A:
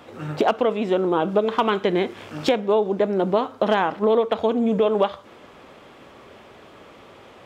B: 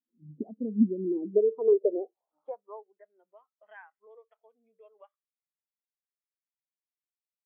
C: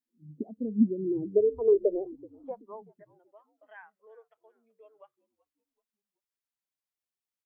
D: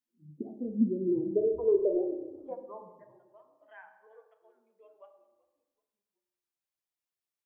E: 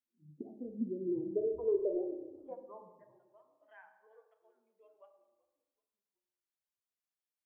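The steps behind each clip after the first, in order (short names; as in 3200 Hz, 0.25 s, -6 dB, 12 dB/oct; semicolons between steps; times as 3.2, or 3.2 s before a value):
band-pass sweep 220 Hz -> 2100 Hz, 1.04–3.12; spectral expander 2.5:1
frequency-shifting echo 0.379 s, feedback 40%, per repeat -76 Hz, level -22.5 dB
on a send at -6 dB: bell 660 Hz +5.5 dB 0.6 oct + reverb RT60 1.1 s, pre-delay 3 ms; on the sum: gain -2.5 dB
dynamic EQ 210 Hz, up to -7 dB, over -44 dBFS, Q 4.4; gain -6 dB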